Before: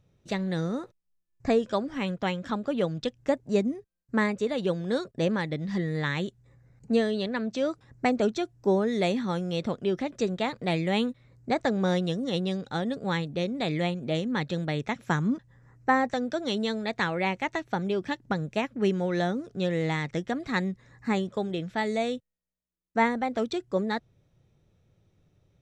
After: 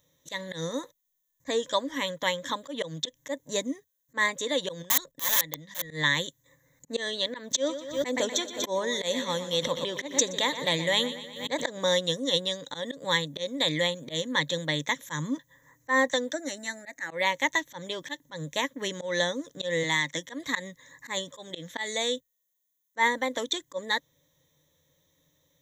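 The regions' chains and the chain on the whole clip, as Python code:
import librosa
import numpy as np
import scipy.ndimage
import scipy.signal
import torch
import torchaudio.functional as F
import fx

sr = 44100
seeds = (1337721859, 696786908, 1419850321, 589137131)

y = fx.chain(x, sr, fx.level_steps(step_db=14),
    fx.overflow_wrap(gain_db=26.5), at=(4.82, 5.9))
y = fx.chain(y, sr, fx.echo_feedback(ms=121, feedback_pct=59, wet_db=-13.5),
    fx.pre_swell(db_per_s=110.0), at=(7.47, 11.67))
y = fx.chain(y, sr, fx.auto_swell(attack_ms=121.0),
    fx.fixed_phaser(hz=690.0, stages=8), at=(16.33, 17.11))
y = fx.chain(y, sr, fx.highpass(hz=180.0, slope=12),
    fx.peak_eq(hz=450.0, db=-8.5, octaves=0.37), at=(19.83, 20.24))
y = fx.ripple_eq(y, sr, per_octave=1.1, db=14)
y = fx.auto_swell(y, sr, attack_ms=114.0)
y = fx.riaa(y, sr, side='recording')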